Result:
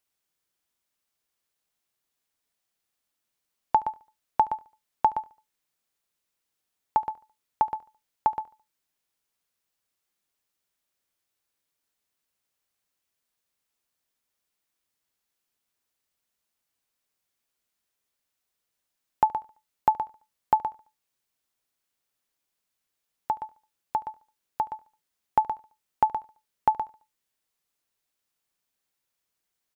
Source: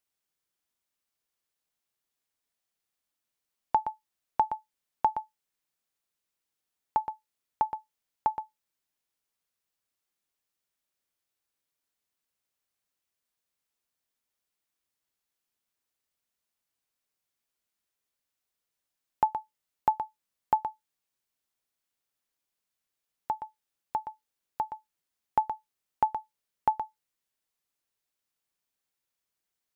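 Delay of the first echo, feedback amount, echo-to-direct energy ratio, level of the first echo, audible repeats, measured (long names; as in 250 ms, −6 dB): 72 ms, 39%, −20.5 dB, −21.0 dB, 2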